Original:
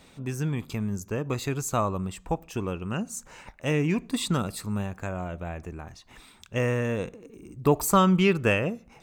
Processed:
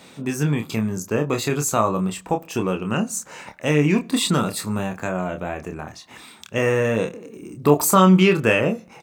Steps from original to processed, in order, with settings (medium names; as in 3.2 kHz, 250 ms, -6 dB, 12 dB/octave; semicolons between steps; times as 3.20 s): high-pass 150 Hz 12 dB/octave; in parallel at 0 dB: peak limiter -19.5 dBFS, peak gain reduction 12 dB; on the sum: doubling 27 ms -6 dB; trim +2 dB